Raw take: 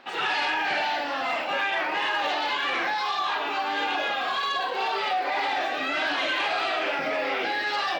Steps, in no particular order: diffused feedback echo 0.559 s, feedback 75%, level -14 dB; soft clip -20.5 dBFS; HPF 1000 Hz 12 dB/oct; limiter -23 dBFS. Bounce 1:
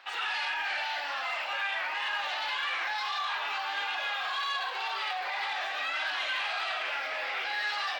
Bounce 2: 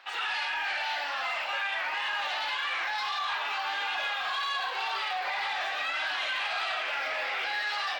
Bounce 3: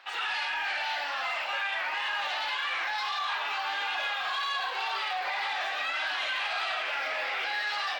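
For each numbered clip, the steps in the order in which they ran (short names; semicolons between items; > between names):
limiter > HPF > soft clip > diffused feedback echo; HPF > limiter > diffused feedback echo > soft clip; HPF > limiter > soft clip > diffused feedback echo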